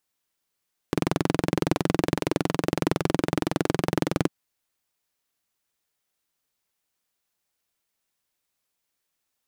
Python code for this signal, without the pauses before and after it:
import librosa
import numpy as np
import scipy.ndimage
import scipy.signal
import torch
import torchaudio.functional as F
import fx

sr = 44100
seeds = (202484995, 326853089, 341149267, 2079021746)

y = fx.engine_single(sr, seeds[0], length_s=3.35, rpm=2600, resonances_hz=(170.0, 300.0))